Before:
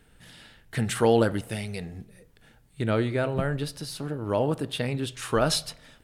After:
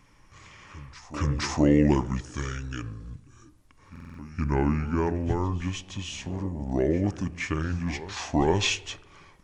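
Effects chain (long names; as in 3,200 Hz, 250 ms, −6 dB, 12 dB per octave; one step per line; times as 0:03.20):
echo ahead of the sound 299 ms −17 dB
change of speed 0.639×
buffer that repeats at 0:03.91, samples 2,048, times 5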